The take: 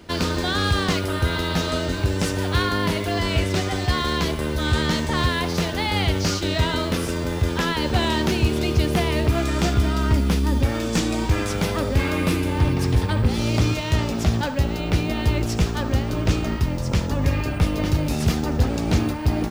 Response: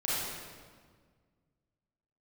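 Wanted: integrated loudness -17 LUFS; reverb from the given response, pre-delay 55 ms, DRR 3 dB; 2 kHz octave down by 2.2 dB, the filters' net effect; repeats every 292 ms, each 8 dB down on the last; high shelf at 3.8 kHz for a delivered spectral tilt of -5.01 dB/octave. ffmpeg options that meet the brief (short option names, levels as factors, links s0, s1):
-filter_complex "[0:a]equalizer=f=2000:t=o:g=-4.5,highshelf=f=3800:g=6.5,aecho=1:1:292|584|876|1168|1460:0.398|0.159|0.0637|0.0255|0.0102,asplit=2[s0][s1];[1:a]atrim=start_sample=2205,adelay=55[s2];[s1][s2]afir=irnorm=-1:irlink=0,volume=0.282[s3];[s0][s3]amix=inputs=2:normalize=0,volume=1.33"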